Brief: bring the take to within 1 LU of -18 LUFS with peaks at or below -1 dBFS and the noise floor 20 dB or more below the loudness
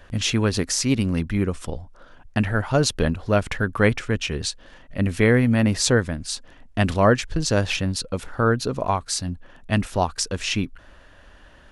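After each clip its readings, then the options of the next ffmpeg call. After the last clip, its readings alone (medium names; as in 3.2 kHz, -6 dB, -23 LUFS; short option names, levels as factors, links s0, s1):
loudness -22.5 LUFS; peak level -2.5 dBFS; loudness target -18.0 LUFS
-> -af "volume=1.68,alimiter=limit=0.891:level=0:latency=1"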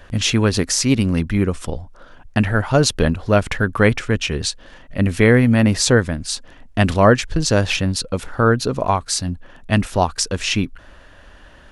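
loudness -18.5 LUFS; peak level -1.0 dBFS; noise floor -45 dBFS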